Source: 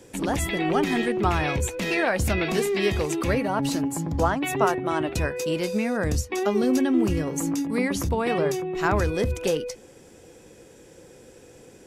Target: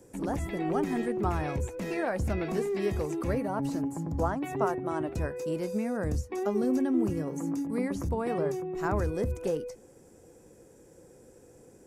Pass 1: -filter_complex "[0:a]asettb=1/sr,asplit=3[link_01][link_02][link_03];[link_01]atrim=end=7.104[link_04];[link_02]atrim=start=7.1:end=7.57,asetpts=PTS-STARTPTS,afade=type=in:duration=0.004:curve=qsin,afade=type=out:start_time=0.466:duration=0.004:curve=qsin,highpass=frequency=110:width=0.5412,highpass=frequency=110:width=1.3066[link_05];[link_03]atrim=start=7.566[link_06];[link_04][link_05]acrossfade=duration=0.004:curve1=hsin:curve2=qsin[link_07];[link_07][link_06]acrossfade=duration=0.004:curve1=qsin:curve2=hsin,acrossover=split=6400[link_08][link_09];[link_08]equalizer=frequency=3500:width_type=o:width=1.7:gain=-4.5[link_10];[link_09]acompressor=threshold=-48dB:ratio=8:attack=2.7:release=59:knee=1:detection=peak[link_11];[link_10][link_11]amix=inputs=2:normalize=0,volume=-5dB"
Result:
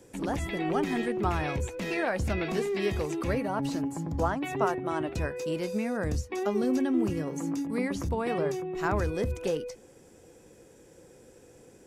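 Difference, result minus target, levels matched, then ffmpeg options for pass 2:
4,000 Hz band +7.0 dB
-filter_complex "[0:a]asettb=1/sr,asplit=3[link_01][link_02][link_03];[link_01]atrim=end=7.104[link_04];[link_02]atrim=start=7.1:end=7.57,asetpts=PTS-STARTPTS,afade=type=in:duration=0.004:curve=qsin,afade=type=out:start_time=0.466:duration=0.004:curve=qsin,highpass=frequency=110:width=0.5412,highpass=frequency=110:width=1.3066[link_05];[link_03]atrim=start=7.566[link_06];[link_04][link_05]acrossfade=duration=0.004:curve1=hsin:curve2=qsin[link_07];[link_07][link_06]acrossfade=duration=0.004:curve1=qsin:curve2=hsin,acrossover=split=6400[link_08][link_09];[link_08]equalizer=frequency=3500:width_type=o:width=1.7:gain=-15[link_10];[link_09]acompressor=threshold=-48dB:ratio=8:attack=2.7:release=59:knee=1:detection=peak[link_11];[link_10][link_11]amix=inputs=2:normalize=0,volume=-5dB"

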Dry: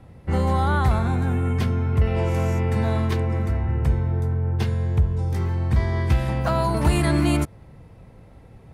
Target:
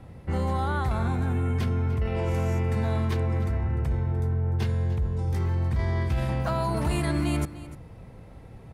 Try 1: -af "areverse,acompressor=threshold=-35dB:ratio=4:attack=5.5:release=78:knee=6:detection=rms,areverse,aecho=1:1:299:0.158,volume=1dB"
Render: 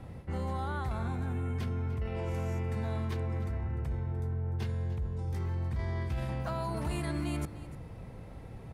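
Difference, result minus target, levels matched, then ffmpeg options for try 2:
downward compressor: peak gain reduction +8 dB
-af "areverse,acompressor=threshold=-24.5dB:ratio=4:attack=5.5:release=78:knee=6:detection=rms,areverse,aecho=1:1:299:0.158,volume=1dB"

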